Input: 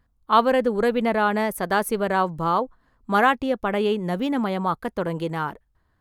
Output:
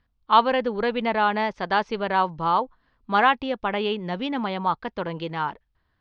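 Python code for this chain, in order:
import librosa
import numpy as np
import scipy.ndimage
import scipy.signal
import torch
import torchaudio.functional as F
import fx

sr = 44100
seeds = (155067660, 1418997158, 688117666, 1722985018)

y = fx.dynamic_eq(x, sr, hz=910.0, q=3.0, threshold_db=-37.0, ratio=4.0, max_db=7)
y = scipy.signal.sosfilt(scipy.signal.butter(8, 5700.0, 'lowpass', fs=sr, output='sos'), y)
y = fx.peak_eq(y, sr, hz=3000.0, db=8.0, octaves=1.5)
y = y * 10.0 ** (-4.5 / 20.0)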